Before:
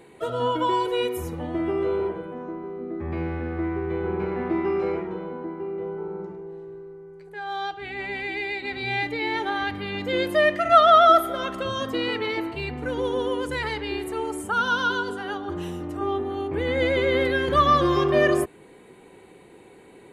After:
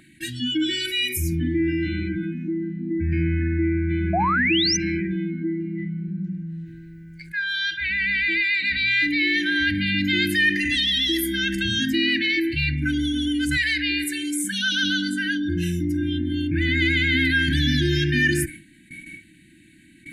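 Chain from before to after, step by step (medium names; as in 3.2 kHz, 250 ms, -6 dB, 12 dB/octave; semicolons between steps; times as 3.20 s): gate with hold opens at -38 dBFS; brick-wall FIR band-stop 340–1500 Hz; 4.13–4.77 s: painted sound rise 640–6300 Hz -29 dBFS; 13.57–14.83 s: bass shelf 220 Hz -11 dB; spectral noise reduction 17 dB; level flattener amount 50%; trim +4.5 dB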